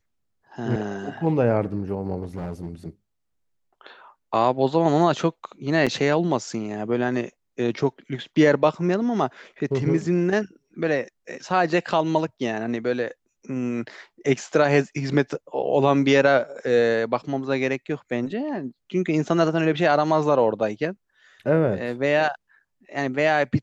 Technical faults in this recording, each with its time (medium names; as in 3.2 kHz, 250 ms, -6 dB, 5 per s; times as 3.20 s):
2.22–2.70 s: clipped -26.5 dBFS
5.86–5.87 s: dropout 6.4 ms